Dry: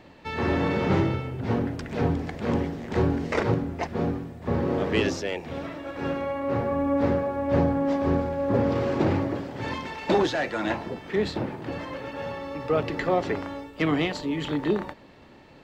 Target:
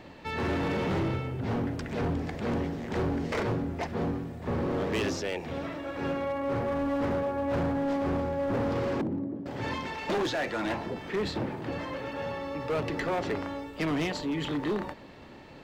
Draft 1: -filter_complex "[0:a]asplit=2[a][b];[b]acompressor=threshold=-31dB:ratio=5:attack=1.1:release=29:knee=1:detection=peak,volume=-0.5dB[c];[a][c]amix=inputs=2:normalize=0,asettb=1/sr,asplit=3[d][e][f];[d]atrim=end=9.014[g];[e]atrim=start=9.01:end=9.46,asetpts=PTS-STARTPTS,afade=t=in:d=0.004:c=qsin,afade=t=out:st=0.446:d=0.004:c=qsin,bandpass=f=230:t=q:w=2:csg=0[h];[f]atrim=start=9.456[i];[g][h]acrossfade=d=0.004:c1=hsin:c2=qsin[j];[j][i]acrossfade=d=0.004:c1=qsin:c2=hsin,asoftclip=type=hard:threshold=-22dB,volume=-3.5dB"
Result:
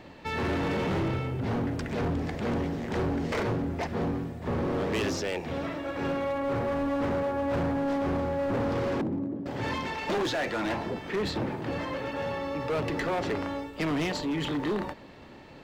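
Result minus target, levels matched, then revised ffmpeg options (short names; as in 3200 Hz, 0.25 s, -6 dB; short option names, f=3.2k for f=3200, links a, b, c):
compressor: peak gain reduction -7.5 dB
-filter_complex "[0:a]asplit=2[a][b];[b]acompressor=threshold=-40.5dB:ratio=5:attack=1.1:release=29:knee=1:detection=peak,volume=-0.5dB[c];[a][c]amix=inputs=2:normalize=0,asettb=1/sr,asplit=3[d][e][f];[d]atrim=end=9.014[g];[e]atrim=start=9.01:end=9.46,asetpts=PTS-STARTPTS,afade=t=in:d=0.004:c=qsin,afade=t=out:st=0.446:d=0.004:c=qsin,bandpass=f=230:t=q:w=2:csg=0[h];[f]atrim=start=9.456[i];[g][h]acrossfade=d=0.004:c1=hsin:c2=qsin[j];[j][i]acrossfade=d=0.004:c1=qsin:c2=hsin,asoftclip=type=hard:threshold=-22dB,volume=-3.5dB"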